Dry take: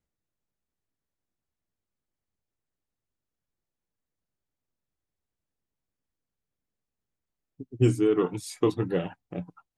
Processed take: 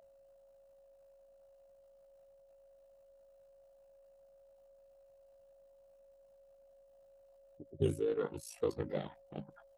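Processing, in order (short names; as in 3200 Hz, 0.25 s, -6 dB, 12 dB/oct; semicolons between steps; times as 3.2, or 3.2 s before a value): ring modulator 27 Hz; whine 550 Hz -50 dBFS; formant shift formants +3 st; gain -7.5 dB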